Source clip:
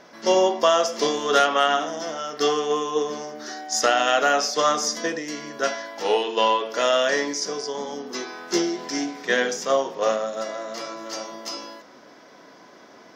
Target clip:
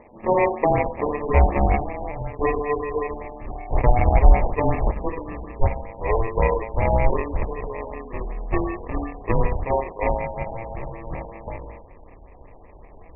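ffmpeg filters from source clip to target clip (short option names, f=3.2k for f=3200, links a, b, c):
-af "acrusher=samples=30:mix=1:aa=0.000001,asubboost=boost=8:cutoff=73,afftfilt=real='re*lt(b*sr/1024,960*pow(3000/960,0.5+0.5*sin(2*PI*5.3*pts/sr)))':imag='im*lt(b*sr/1024,960*pow(3000/960,0.5+0.5*sin(2*PI*5.3*pts/sr)))':win_size=1024:overlap=0.75"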